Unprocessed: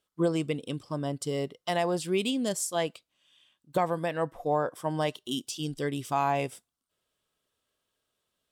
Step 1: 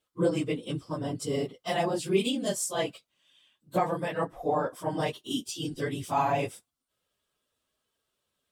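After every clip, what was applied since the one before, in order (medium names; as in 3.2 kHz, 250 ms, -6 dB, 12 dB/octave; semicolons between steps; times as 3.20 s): phase randomisation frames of 50 ms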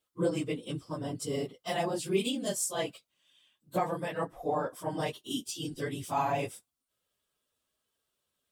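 treble shelf 7.2 kHz +5.5 dB; trim -3.5 dB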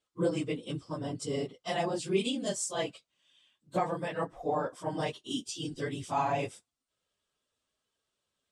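low-pass 8.5 kHz 24 dB/octave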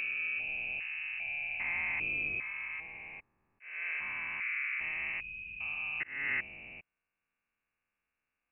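spectrogram pixelated in time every 400 ms; slow attack 284 ms; frequency inversion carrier 2.8 kHz; trim +1.5 dB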